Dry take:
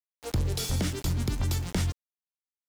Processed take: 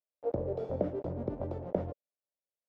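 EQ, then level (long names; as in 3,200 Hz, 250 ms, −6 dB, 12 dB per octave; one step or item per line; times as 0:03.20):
high-pass filter 400 Hz 6 dB per octave
low-pass with resonance 570 Hz, resonance Q 4.9
0.0 dB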